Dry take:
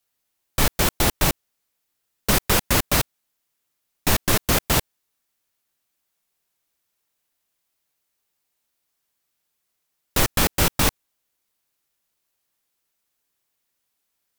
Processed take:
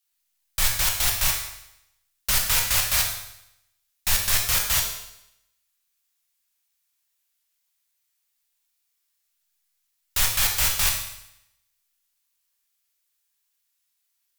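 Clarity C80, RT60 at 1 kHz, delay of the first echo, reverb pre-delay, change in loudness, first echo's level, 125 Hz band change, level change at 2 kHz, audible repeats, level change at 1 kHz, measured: 7.5 dB, 0.80 s, none, 19 ms, -0.5 dB, none, -9.5 dB, -2.0 dB, none, -7.0 dB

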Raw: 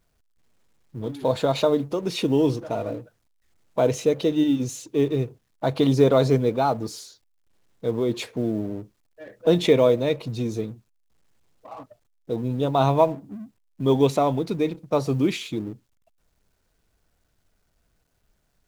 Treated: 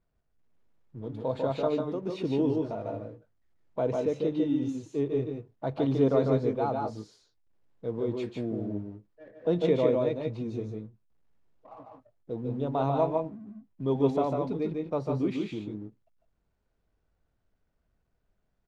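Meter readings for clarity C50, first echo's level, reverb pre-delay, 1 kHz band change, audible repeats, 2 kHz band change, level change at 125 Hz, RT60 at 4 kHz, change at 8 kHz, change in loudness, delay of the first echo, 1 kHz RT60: none, -4.0 dB, none, -7.5 dB, 1, -11.0 dB, -7.0 dB, none, under -15 dB, -6.5 dB, 0.148 s, none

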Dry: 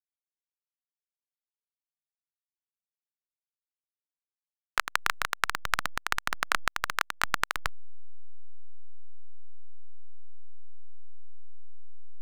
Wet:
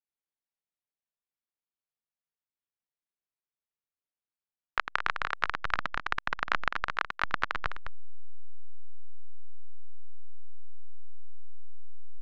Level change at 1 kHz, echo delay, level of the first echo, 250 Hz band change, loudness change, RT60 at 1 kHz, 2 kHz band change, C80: -1.0 dB, 0.207 s, -9.0 dB, 0.0 dB, -2.0 dB, none, -1.5 dB, none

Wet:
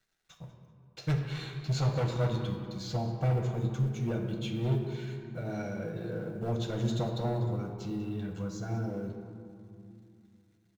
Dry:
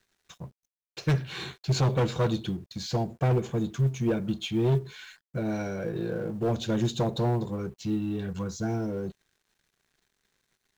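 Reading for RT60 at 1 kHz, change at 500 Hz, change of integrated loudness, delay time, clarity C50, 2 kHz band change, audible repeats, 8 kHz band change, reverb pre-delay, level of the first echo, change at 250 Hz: 2.7 s, -5.5 dB, -4.0 dB, 0.192 s, 5.0 dB, -5.0 dB, 1, n/a, 6 ms, -16.0 dB, -5.5 dB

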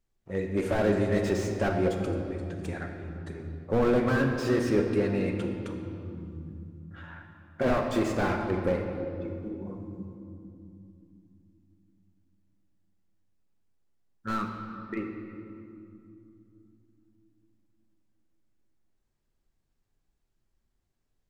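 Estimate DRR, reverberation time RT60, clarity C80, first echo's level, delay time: 2.5 dB, 2.6 s, 5.5 dB, none, none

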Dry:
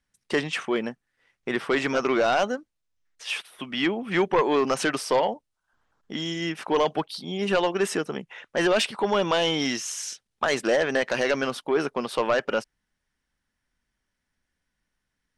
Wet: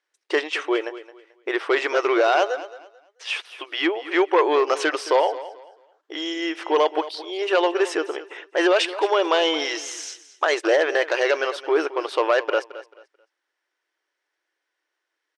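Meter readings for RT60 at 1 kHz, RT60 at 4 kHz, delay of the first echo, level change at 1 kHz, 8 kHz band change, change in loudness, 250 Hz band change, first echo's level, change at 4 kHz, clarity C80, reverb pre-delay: none, none, 0.219 s, +4.0 dB, -1.5 dB, +3.5 dB, 0.0 dB, -15.5 dB, +2.5 dB, none, none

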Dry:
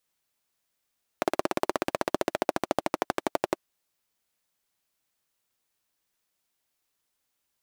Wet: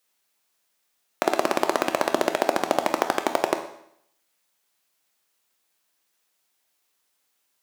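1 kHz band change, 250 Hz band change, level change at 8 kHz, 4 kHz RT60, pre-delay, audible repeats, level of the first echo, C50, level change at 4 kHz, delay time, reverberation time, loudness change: +6.5 dB, +3.5 dB, +7.0 dB, 0.70 s, 12 ms, none, none, 10.0 dB, +7.0 dB, none, 0.70 s, +6.0 dB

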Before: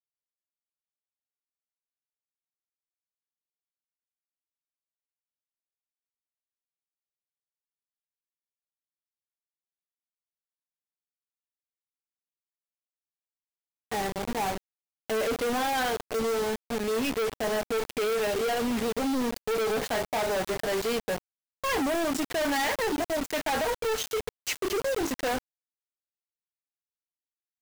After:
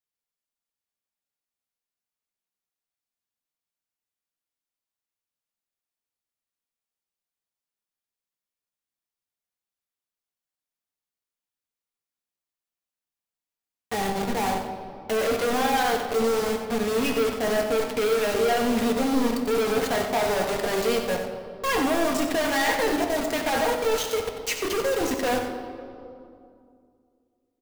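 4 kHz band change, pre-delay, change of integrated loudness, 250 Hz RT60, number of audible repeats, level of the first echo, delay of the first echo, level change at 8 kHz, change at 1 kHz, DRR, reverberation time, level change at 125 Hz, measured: +3.5 dB, 4 ms, +4.0 dB, 3.0 s, 1, -9.0 dB, 92 ms, +3.0 dB, +4.5 dB, 2.5 dB, 2.6 s, +5.0 dB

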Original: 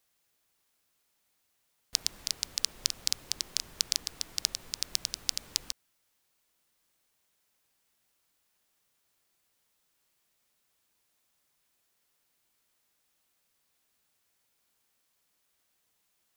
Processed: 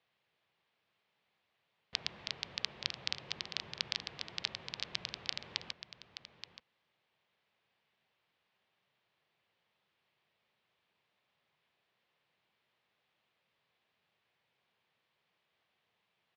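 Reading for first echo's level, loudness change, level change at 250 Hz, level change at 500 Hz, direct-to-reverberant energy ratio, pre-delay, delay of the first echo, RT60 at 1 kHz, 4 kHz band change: -11.0 dB, -7.5 dB, 0.0 dB, +2.0 dB, none, none, 0.876 s, none, -5.5 dB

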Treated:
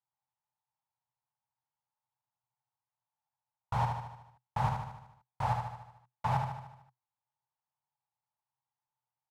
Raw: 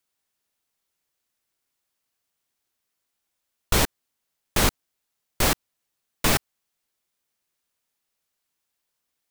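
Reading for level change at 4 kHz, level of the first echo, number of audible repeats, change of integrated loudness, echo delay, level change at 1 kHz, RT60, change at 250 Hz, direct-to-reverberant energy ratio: -24.5 dB, -5.0 dB, 6, -11.0 dB, 75 ms, -1.5 dB, none, -14.0 dB, none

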